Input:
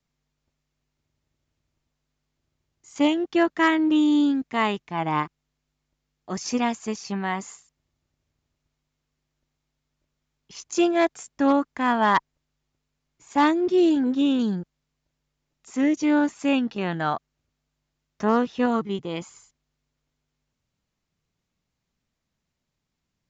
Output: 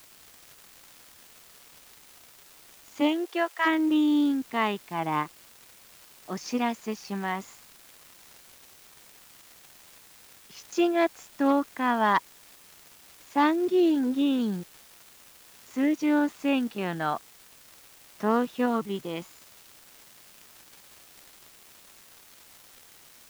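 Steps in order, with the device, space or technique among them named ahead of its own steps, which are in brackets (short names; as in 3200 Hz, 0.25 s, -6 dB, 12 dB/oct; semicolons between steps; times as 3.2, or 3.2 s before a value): 78 rpm shellac record (BPF 150–5100 Hz; crackle 380/s -37 dBFS; white noise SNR 25 dB); 3–3.65 HPF 200 Hz -> 680 Hz 24 dB/oct; gain -3 dB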